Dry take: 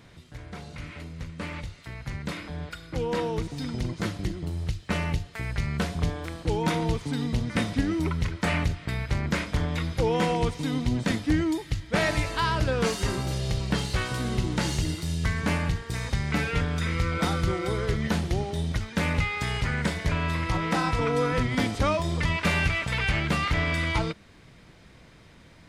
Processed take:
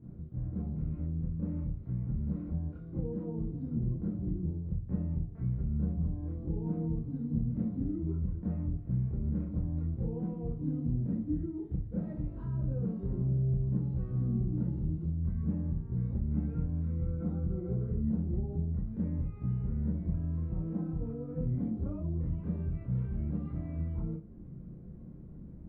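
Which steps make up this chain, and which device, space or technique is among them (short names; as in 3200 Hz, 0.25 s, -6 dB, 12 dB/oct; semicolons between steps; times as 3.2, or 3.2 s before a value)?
23.26–23.76 HPF 160 Hz 6 dB/oct; television next door (compressor 5:1, threshold -36 dBFS, peak gain reduction 15.5 dB; LPF 270 Hz 12 dB/oct; reverb RT60 0.35 s, pre-delay 18 ms, DRR -8 dB); gain -2.5 dB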